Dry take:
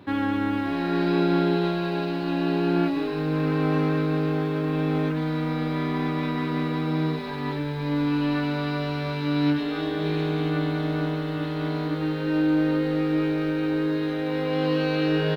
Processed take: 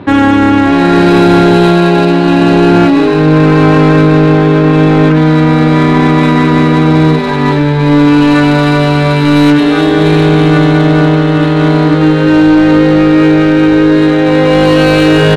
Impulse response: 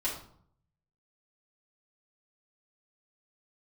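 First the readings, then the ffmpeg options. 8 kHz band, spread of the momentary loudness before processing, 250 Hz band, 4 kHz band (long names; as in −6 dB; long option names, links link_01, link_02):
can't be measured, 5 LU, +18.0 dB, +17.0 dB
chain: -af "adynamicsmooth=sensitivity=7:basefreq=3000,apsyclip=21.5dB,volume=-1.5dB"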